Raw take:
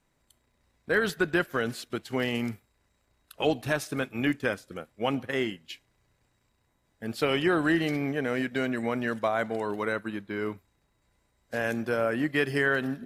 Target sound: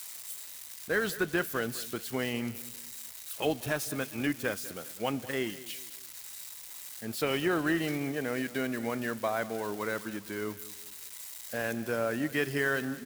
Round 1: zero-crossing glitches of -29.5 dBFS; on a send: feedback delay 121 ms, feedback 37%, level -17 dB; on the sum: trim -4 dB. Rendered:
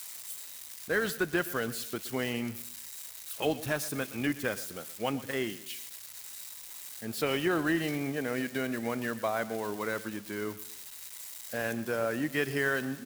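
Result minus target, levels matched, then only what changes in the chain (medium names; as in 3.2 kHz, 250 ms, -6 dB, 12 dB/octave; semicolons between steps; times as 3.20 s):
echo 80 ms early
change: feedback delay 201 ms, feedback 37%, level -17 dB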